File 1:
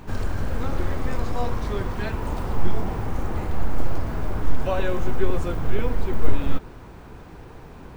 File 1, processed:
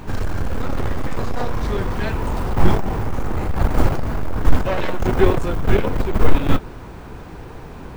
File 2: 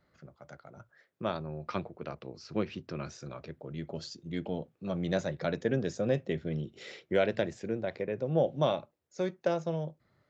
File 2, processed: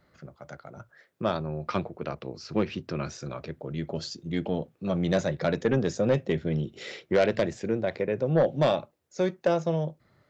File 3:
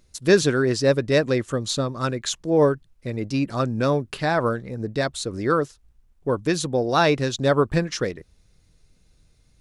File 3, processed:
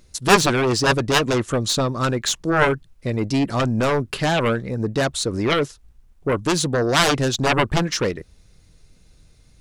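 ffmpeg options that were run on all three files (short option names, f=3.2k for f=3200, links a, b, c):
-af "aeval=exprs='0.708*(cos(1*acos(clip(val(0)/0.708,-1,1)))-cos(1*PI/2))+0.316*(cos(7*acos(clip(val(0)/0.708,-1,1)))-cos(7*PI/2))':c=same"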